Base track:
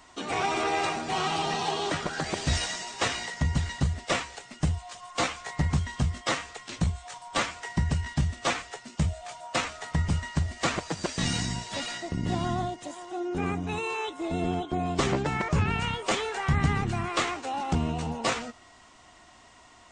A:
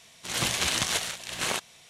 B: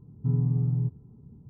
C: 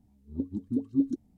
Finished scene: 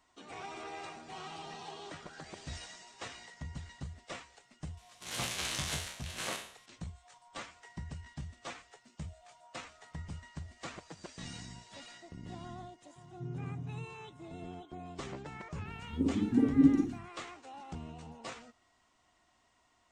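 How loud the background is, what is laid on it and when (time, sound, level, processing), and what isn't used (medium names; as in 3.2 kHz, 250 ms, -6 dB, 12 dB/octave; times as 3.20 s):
base track -17 dB
4.77 s: add A -12 dB + spectral sustain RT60 0.56 s
12.96 s: add B -17.5 dB + spectral levelling over time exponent 0.6
15.61 s: add C -0.5 dB + Schroeder reverb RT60 0.49 s, DRR -4 dB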